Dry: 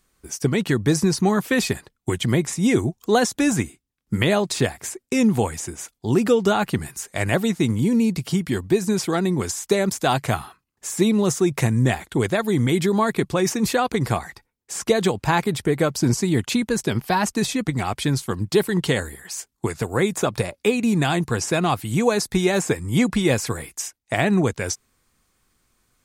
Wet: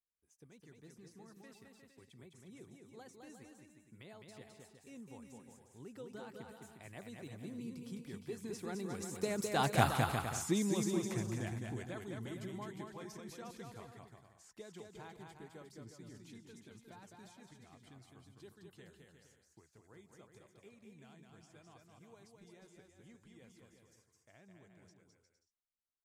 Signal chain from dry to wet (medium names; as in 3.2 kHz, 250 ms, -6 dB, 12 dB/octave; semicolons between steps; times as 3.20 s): Doppler pass-by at 10.00 s, 17 m/s, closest 1.9 m; bouncing-ball echo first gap 210 ms, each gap 0.7×, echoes 5; trim -1 dB